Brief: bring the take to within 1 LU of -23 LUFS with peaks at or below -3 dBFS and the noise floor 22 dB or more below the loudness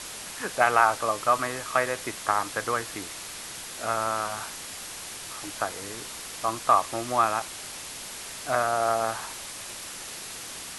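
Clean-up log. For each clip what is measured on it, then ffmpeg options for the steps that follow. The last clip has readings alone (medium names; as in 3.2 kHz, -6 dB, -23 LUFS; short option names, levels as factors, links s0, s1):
noise floor -39 dBFS; noise floor target -50 dBFS; loudness -28.0 LUFS; peak level -5.5 dBFS; loudness target -23.0 LUFS
-> -af "afftdn=nr=11:nf=-39"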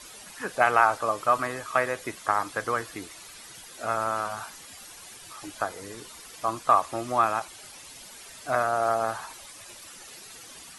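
noise floor -46 dBFS; noise floor target -49 dBFS
-> -af "afftdn=nr=6:nf=-46"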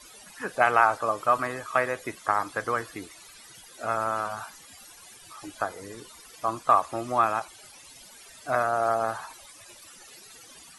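noise floor -50 dBFS; loudness -26.5 LUFS; peak level -5.5 dBFS; loudness target -23.0 LUFS
-> -af "volume=1.5,alimiter=limit=0.708:level=0:latency=1"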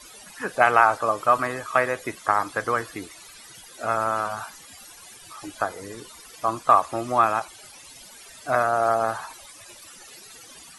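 loudness -23.0 LUFS; peak level -3.0 dBFS; noise floor -46 dBFS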